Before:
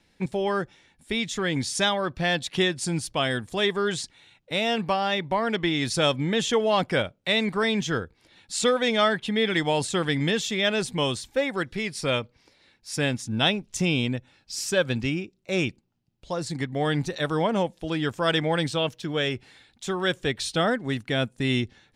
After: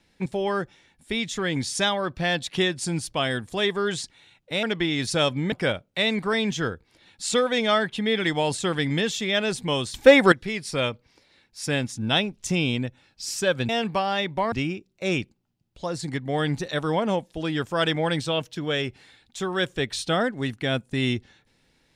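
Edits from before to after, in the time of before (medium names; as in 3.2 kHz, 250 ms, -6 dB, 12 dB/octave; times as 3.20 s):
4.63–5.46 s: move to 14.99 s
6.35–6.82 s: delete
11.24–11.62 s: gain +12 dB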